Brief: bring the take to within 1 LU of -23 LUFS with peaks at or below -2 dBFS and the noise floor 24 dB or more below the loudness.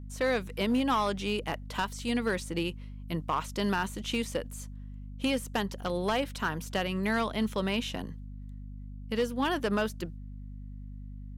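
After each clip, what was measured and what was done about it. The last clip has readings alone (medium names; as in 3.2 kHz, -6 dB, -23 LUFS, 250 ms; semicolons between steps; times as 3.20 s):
clipped samples 0.8%; clipping level -21.5 dBFS; hum 50 Hz; highest harmonic 250 Hz; hum level -40 dBFS; loudness -31.5 LUFS; peak level -21.5 dBFS; loudness target -23.0 LUFS
-> clip repair -21.5 dBFS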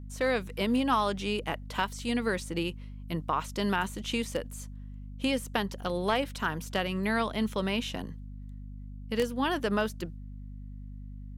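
clipped samples 0.0%; hum 50 Hz; highest harmonic 250 Hz; hum level -40 dBFS
-> de-hum 50 Hz, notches 5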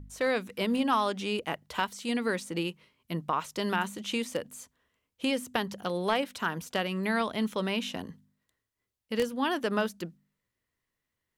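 hum not found; loudness -31.0 LUFS; peak level -12.0 dBFS; loudness target -23.0 LUFS
-> trim +8 dB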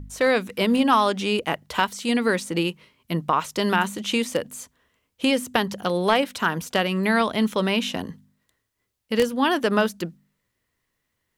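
loudness -23.0 LUFS; peak level -4.0 dBFS; noise floor -77 dBFS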